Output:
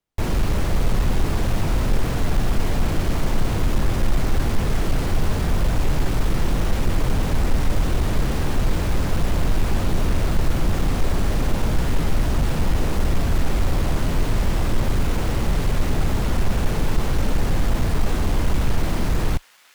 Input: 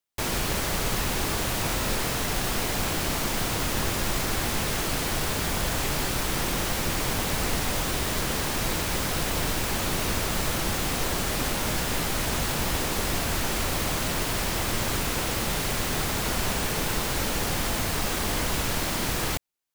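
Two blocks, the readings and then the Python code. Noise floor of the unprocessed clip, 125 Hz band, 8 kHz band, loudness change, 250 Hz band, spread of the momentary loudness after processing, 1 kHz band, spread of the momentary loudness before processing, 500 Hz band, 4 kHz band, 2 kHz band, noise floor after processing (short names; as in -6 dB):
-29 dBFS, +9.0 dB, -8.0 dB, +2.5 dB, +5.5 dB, 1 LU, -0.5 dB, 0 LU, +2.5 dB, -5.5 dB, -3.0 dB, -23 dBFS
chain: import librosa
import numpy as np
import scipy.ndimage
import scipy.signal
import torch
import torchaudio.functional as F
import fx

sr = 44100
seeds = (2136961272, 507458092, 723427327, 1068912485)

y = np.clip(10.0 ** (31.0 / 20.0) * x, -1.0, 1.0) / 10.0 ** (31.0 / 20.0)
y = fx.tilt_eq(y, sr, slope=-3.0)
y = fx.echo_wet_highpass(y, sr, ms=1036, feedback_pct=67, hz=1700.0, wet_db=-18.5)
y = F.gain(torch.from_numpy(y), 5.5).numpy()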